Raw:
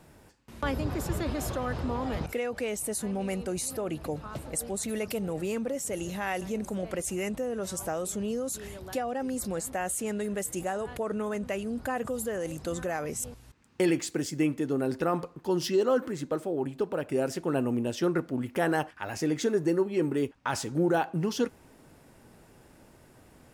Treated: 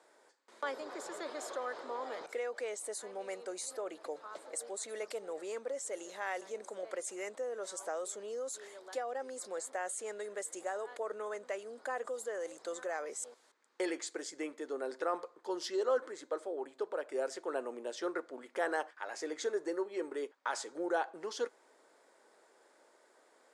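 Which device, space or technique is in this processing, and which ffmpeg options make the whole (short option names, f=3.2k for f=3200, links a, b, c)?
phone speaker on a table: -af "highpass=f=430:w=0.5412,highpass=f=430:w=1.3066,equalizer=f=760:t=q:w=4:g=-3,equalizer=f=2.7k:t=q:w=4:g=-10,equalizer=f=5.6k:t=q:w=4:g=-4,lowpass=f=8.5k:w=0.5412,lowpass=f=8.5k:w=1.3066,volume=-4dB"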